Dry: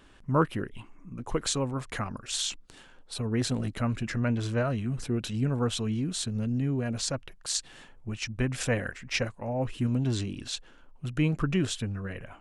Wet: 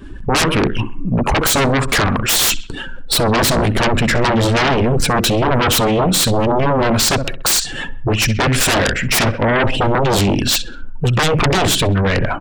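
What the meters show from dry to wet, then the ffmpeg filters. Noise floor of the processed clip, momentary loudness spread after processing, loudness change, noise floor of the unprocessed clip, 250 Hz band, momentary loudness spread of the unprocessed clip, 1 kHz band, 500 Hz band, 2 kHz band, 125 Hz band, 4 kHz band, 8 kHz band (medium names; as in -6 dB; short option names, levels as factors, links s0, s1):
-27 dBFS, 5 LU, +15.0 dB, -54 dBFS, +12.0 dB, 9 LU, +20.5 dB, +16.5 dB, +19.5 dB, +12.0 dB, +18.0 dB, +16.5 dB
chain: -filter_complex "[0:a]bandreject=f=6400:w=22,afftdn=nr=20:nf=-51,asplit=2[s0][s1];[s1]acompressor=threshold=0.0141:ratio=20,volume=0.794[s2];[s0][s2]amix=inputs=2:normalize=0,asoftclip=type=hard:threshold=0.158,asplit=2[s3][s4];[s4]adelay=65,lowpass=f=3500:p=1,volume=0.158,asplit=2[s5][s6];[s6]adelay=65,lowpass=f=3500:p=1,volume=0.42,asplit=2[s7][s8];[s8]adelay=65,lowpass=f=3500:p=1,volume=0.42,asplit=2[s9][s10];[s10]adelay=65,lowpass=f=3500:p=1,volume=0.42[s11];[s3][s5][s7][s9][s11]amix=inputs=5:normalize=0,acrossover=split=560[s12][s13];[s12]aeval=exprs='val(0)*(1-0.5/2+0.5/2*cos(2*PI*5.8*n/s))':c=same[s14];[s13]aeval=exprs='val(0)*(1-0.5/2-0.5/2*cos(2*PI*5.8*n/s))':c=same[s15];[s14][s15]amix=inputs=2:normalize=0,aeval=exprs='0.211*sin(PI/2*8.91*val(0)/0.211)':c=same,volume=1.33"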